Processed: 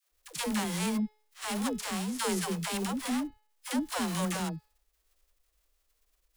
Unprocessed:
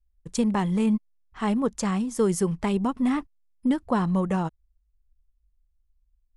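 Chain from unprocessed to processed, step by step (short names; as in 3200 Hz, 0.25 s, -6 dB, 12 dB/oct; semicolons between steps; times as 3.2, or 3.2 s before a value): spectral whitening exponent 0.3; de-hum 426.3 Hz, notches 12; dispersion lows, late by 0.114 s, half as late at 430 Hz; gain -7.5 dB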